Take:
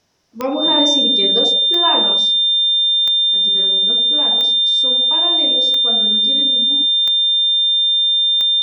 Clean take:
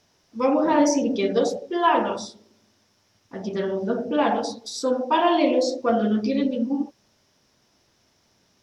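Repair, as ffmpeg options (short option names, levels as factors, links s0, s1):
-af "adeclick=t=4,bandreject=f=3600:w=30,asetnsamples=n=441:p=0,asendcmd='2.97 volume volume 7.5dB',volume=1"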